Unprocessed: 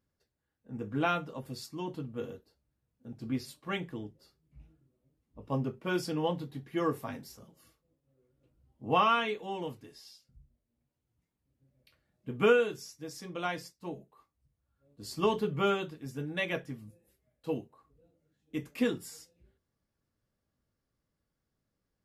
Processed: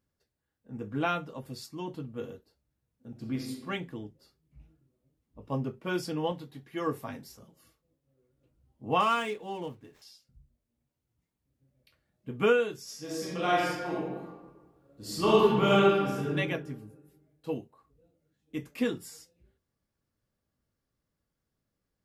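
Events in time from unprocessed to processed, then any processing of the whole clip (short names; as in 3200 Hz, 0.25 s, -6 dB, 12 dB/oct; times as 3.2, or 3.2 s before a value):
3.1–3.61 reverb throw, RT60 0.94 s, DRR 2 dB
6.32–6.87 low shelf 420 Hz -6 dB
9–10.02 median filter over 9 samples
12.83–16.31 reverb throw, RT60 1.4 s, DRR -7.5 dB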